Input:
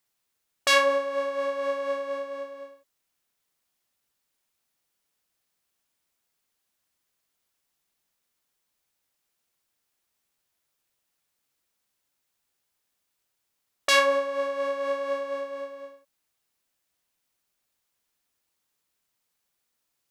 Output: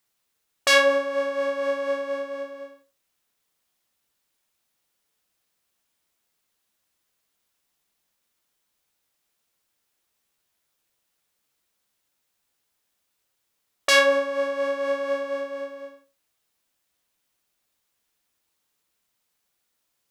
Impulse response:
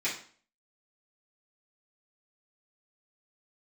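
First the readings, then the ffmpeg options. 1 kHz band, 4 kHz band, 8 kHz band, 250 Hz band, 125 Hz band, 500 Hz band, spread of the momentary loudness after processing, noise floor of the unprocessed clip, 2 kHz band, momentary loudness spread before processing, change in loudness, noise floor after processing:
-0.5 dB, +3.0 dB, +2.5 dB, +6.0 dB, n/a, +3.0 dB, 17 LU, -79 dBFS, +4.0 dB, 17 LU, +3.0 dB, -76 dBFS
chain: -filter_complex "[0:a]asplit=2[a][b];[b]lowpass=3.6k[c];[1:a]atrim=start_sample=2205,asetrate=70560,aresample=44100,adelay=7[d];[c][d]afir=irnorm=-1:irlink=0,volume=-9.5dB[e];[a][e]amix=inputs=2:normalize=0,volume=2.5dB"

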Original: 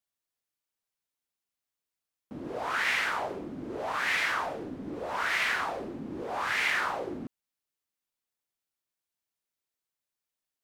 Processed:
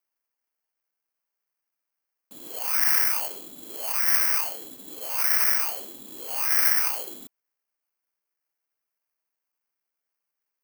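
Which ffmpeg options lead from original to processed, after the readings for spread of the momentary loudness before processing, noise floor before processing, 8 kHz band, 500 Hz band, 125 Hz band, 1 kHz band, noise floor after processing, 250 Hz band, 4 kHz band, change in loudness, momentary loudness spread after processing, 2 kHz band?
13 LU, under -85 dBFS, +16.5 dB, -7.0 dB, under -10 dB, -5.0 dB, -85 dBFS, -10.5 dB, +2.5 dB, +9.0 dB, 19 LU, -3.5 dB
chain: -af "acrusher=samples=12:mix=1:aa=0.000001,aemphasis=mode=production:type=riaa,volume=-5dB"

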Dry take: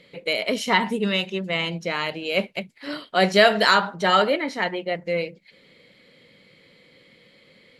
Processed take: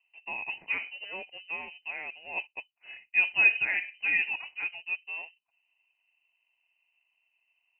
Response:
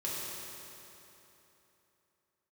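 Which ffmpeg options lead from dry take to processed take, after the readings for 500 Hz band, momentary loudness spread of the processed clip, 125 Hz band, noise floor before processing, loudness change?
-28.0 dB, 18 LU, under -25 dB, -56 dBFS, -7.0 dB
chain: -filter_complex "[0:a]adynamicsmooth=sensitivity=4.5:basefreq=760,asplit=3[a][b][c];[a]bandpass=f=730:t=q:w=8,volume=0dB[d];[b]bandpass=f=1.09k:t=q:w=8,volume=-6dB[e];[c]bandpass=f=2.44k:t=q:w=8,volume=-9dB[f];[d][e][f]amix=inputs=3:normalize=0,lowpass=f=2.7k:t=q:w=0.5098,lowpass=f=2.7k:t=q:w=0.6013,lowpass=f=2.7k:t=q:w=0.9,lowpass=f=2.7k:t=q:w=2.563,afreqshift=-3200"

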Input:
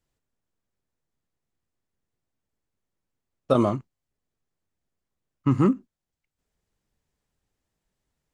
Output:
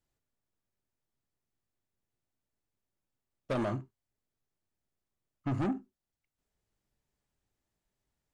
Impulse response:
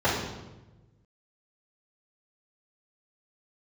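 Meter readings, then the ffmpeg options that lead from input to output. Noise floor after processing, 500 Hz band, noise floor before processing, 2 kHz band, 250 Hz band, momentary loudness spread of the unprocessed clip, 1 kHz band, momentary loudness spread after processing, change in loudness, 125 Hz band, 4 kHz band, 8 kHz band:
under -85 dBFS, -11.5 dB, under -85 dBFS, -1.0 dB, -11.5 dB, 10 LU, -10.0 dB, 8 LU, -11.0 dB, -10.0 dB, -8.0 dB, n/a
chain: -filter_complex "[0:a]asoftclip=type=tanh:threshold=-23dB,asplit=2[a][b];[1:a]atrim=start_sample=2205,atrim=end_sample=4410[c];[b][c]afir=irnorm=-1:irlink=0,volume=-29dB[d];[a][d]amix=inputs=2:normalize=0,volume=-5dB"

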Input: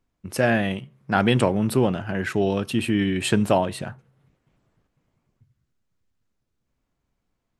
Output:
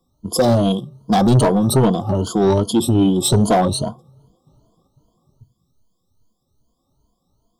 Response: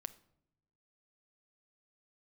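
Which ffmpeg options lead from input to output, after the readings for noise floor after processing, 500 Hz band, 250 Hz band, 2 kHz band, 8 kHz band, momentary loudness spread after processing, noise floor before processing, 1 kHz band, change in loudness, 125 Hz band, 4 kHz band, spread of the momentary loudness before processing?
-70 dBFS, +5.5 dB, +6.5 dB, -7.0 dB, +11.5 dB, 7 LU, -77 dBFS, +6.5 dB, +6.0 dB, +8.5 dB, +6.0 dB, 10 LU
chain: -filter_complex "[0:a]afftfilt=real='re*pow(10,19/40*sin(2*PI*(1.8*log(max(b,1)*sr/1024/100)/log(2)-(2.5)*(pts-256)/sr)))':imag='im*pow(10,19/40*sin(2*PI*(1.8*log(max(b,1)*sr/1024/100)/log(2)-(2.5)*(pts-256)/sr)))':win_size=1024:overlap=0.75,acrossover=split=490|2700[a][b][c];[b]asoftclip=type=hard:threshold=-18.5dB[d];[a][d][c]amix=inputs=3:normalize=0,asuperstop=centerf=2000:order=12:qfactor=1,asoftclip=type=tanh:threshold=-16dB,volume=7.5dB"

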